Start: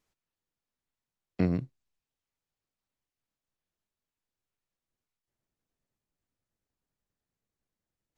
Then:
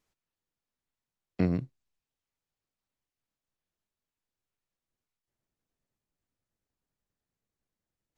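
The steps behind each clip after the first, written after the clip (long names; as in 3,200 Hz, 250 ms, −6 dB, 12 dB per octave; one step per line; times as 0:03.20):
no processing that can be heard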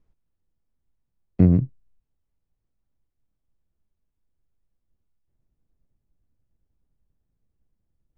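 spectral tilt −4.5 dB per octave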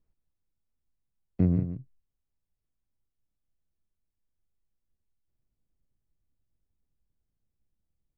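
single-tap delay 175 ms −10 dB
level −8 dB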